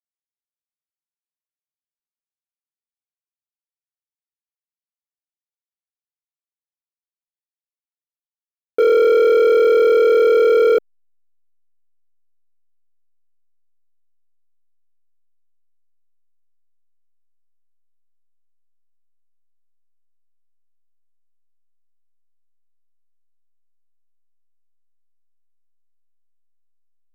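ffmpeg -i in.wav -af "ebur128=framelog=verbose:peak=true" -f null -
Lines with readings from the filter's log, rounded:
Integrated loudness:
  I:         -14.0 LUFS
  Threshold: -24.2 LUFS
Loudness range:
  LRA:         9.7 LU
  Threshold: -37.4 LUFS
  LRA low:   -24.9 LUFS
  LRA high:  -15.2 LUFS
True peak:
  Peak:      -10.3 dBFS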